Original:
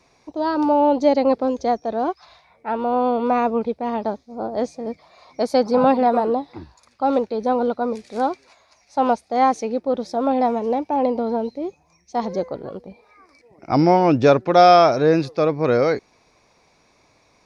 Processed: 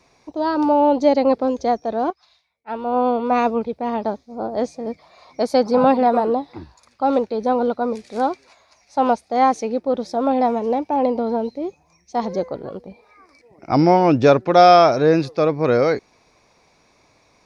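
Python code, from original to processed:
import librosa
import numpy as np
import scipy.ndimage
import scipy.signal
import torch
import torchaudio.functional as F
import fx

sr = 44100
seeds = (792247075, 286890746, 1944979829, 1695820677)

y = fx.band_widen(x, sr, depth_pct=100, at=(2.1, 3.73))
y = y * 10.0 ** (1.0 / 20.0)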